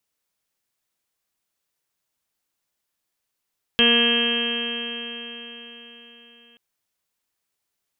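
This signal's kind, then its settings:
stiff-string partials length 2.78 s, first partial 234 Hz, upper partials −1/−12/−15/−11.5/−18/−3/−12.5/−11/−10.5/1/−2.5/6 dB, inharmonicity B 0.00059, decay 4.30 s, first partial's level −21.5 dB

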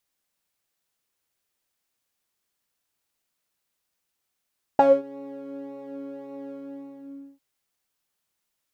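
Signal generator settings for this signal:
subtractive patch with pulse-width modulation C#4, sub −17.5 dB, filter bandpass, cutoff 290 Hz, Q 8.7, filter envelope 1.5 octaves, filter decay 0.21 s, filter sustain 30%, attack 2.3 ms, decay 0.23 s, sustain −21 dB, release 0.89 s, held 1.71 s, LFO 1.8 Hz, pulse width 24%, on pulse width 7%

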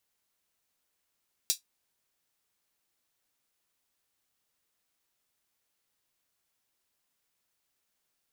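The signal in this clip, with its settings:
closed synth hi-hat, high-pass 4,400 Hz, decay 0.13 s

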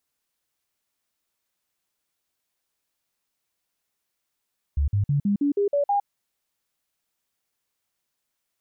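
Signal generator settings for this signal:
stepped sweep 71.5 Hz up, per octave 2, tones 8, 0.11 s, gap 0.05 s −18.5 dBFS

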